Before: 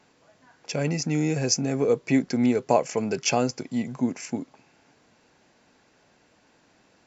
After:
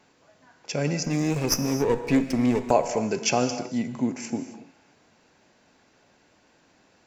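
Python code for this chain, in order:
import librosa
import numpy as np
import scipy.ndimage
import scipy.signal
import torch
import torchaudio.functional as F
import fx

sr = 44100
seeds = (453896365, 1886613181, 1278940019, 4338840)

y = fx.lower_of_two(x, sr, delay_ms=0.37, at=(1.04, 2.71))
y = fx.rev_gated(y, sr, seeds[0], gate_ms=300, shape='flat', drr_db=9.0)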